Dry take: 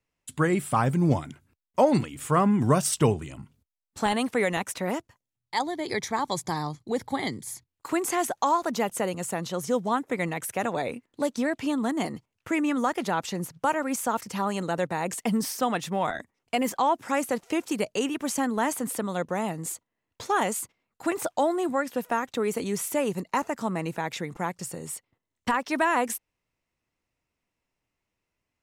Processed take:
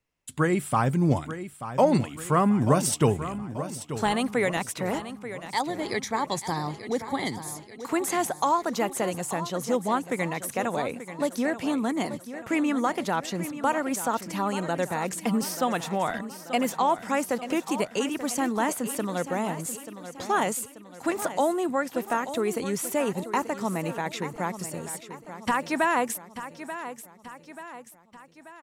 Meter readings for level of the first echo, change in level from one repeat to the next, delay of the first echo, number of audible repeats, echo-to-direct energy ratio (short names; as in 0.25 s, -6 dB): -12.0 dB, -6.0 dB, 0.885 s, 4, -10.5 dB